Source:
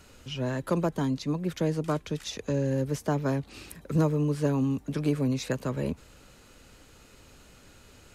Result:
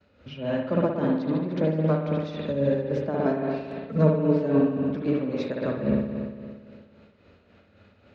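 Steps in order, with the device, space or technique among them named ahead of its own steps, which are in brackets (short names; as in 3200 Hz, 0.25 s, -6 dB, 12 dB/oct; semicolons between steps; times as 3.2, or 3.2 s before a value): expander -48 dBFS; 3.13–4.58 comb 4.5 ms; combo amplifier with spring reverb and tremolo (spring tank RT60 2 s, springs 57 ms, chirp 20 ms, DRR -2 dB; tremolo 3.7 Hz, depth 54%; speaker cabinet 80–3900 Hz, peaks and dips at 93 Hz +10 dB, 130 Hz -6 dB, 210 Hz +8 dB, 580 Hz +8 dB, 1000 Hz -3 dB, 3100 Hz -5 dB)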